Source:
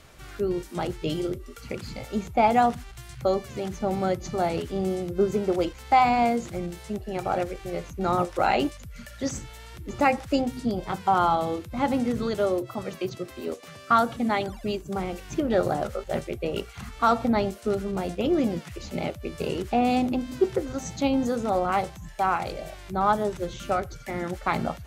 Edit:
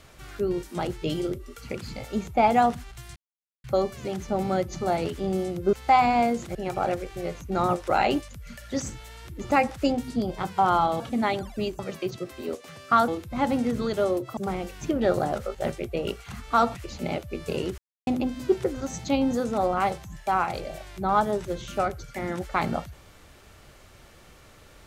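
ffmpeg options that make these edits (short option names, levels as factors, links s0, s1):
-filter_complex "[0:a]asplit=11[s0][s1][s2][s3][s4][s5][s6][s7][s8][s9][s10];[s0]atrim=end=3.16,asetpts=PTS-STARTPTS,afade=t=out:st=3.156:d=0.004:c=hsin,apad=pad_dur=0.48[s11];[s1]atrim=start=3.16:end=5.252,asetpts=PTS-STARTPTS,afade=t=in:d=0.004:c=hsin[s12];[s2]atrim=start=5.758:end=6.582[s13];[s3]atrim=start=7.038:end=11.492[s14];[s4]atrim=start=14.068:end=14.862[s15];[s5]atrim=start=12.778:end=14.072[s16];[s6]atrim=start=11.488:end=12.782[s17];[s7]atrim=start=14.858:end=17.242[s18];[s8]atrim=start=18.668:end=19.7,asetpts=PTS-STARTPTS,afade=t=out:st=1.028:d=0.004:c=hsin[s19];[s9]atrim=start=19.7:end=19.99,asetpts=PTS-STARTPTS,volume=0[s20];[s10]atrim=start=19.99,asetpts=PTS-STARTPTS,afade=t=in:d=0.004:c=hsin[s21];[s11][s12]concat=n=2:v=0:a=1[s22];[s22][s13]acrossfade=d=0.004:c1=hsin:c2=hsin[s23];[s23][s14]acrossfade=d=0.004:c1=hsin:c2=hsin[s24];[s24][s15]acrossfade=d=0.004:c1=hsin:c2=hsin[s25];[s25][s16]acrossfade=d=0.004:c1=hsin:c2=hsin[s26];[s26][s17]acrossfade=d=0.004:c1=hsin:c2=hsin[s27];[s27][s18]acrossfade=d=0.004:c1=hsin:c2=hsin[s28];[s19][s20][s21]concat=n=3:v=0:a=1[s29];[s28][s29]acrossfade=d=0.004:c1=hsin:c2=hsin"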